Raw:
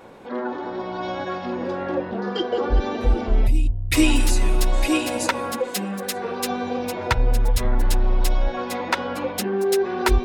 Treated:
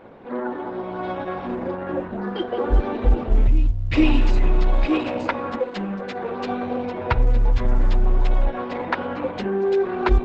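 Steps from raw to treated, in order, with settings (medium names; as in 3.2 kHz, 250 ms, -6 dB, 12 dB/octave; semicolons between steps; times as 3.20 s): 1.70–2.59 s: dynamic bell 460 Hz, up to -5 dB, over -35 dBFS, Q 3.5; 3.38–4.12 s: upward compressor, threshold -20 dBFS; distance through air 340 m; trim +1.5 dB; Opus 12 kbps 48 kHz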